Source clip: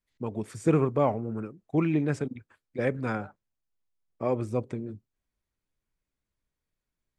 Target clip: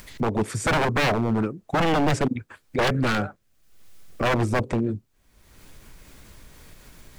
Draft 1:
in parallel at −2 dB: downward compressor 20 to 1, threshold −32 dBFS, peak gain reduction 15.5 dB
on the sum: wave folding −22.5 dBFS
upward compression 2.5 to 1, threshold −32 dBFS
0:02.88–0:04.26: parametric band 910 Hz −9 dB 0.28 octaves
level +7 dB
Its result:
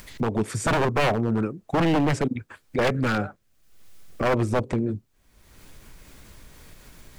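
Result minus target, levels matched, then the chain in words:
downward compressor: peak gain reduction +10.5 dB
in parallel at −2 dB: downward compressor 20 to 1, threshold −21 dBFS, peak gain reduction 5 dB
on the sum: wave folding −22.5 dBFS
upward compression 2.5 to 1, threshold −32 dBFS
0:02.88–0:04.26: parametric band 910 Hz −9 dB 0.28 octaves
level +7 dB

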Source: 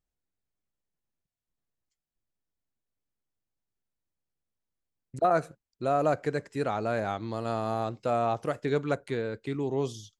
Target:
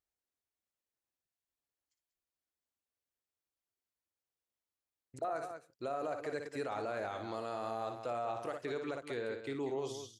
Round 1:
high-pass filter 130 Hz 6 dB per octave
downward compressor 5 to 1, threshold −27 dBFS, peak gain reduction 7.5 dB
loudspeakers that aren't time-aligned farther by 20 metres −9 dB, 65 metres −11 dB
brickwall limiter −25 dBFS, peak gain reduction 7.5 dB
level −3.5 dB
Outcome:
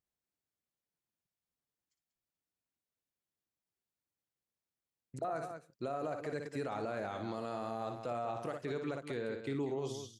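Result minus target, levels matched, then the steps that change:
125 Hz band +6.0 dB
add after high-pass filter: parametric band 170 Hz −11 dB 1.1 octaves

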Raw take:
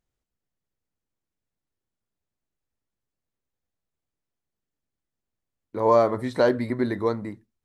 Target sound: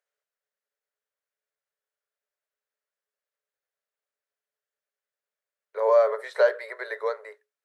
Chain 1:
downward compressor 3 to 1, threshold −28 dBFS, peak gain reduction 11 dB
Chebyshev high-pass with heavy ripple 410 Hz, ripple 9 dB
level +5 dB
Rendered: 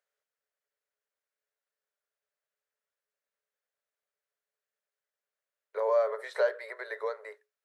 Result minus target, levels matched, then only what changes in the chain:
downward compressor: peak gain reduction +7 dB
change: downward compressor 3 to 1, threshold −17.5 dBFS, peak gain reduction 4 dB

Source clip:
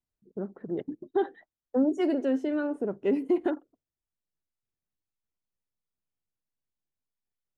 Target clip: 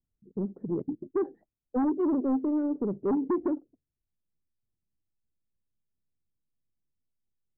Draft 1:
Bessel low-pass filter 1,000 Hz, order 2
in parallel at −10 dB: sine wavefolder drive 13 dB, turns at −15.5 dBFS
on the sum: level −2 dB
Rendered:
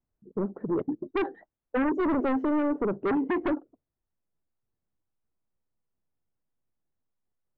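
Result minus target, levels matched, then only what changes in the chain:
1,000 Hz band +4.5 dB
change: Bessel low-pass filter 250 Hz, order 2

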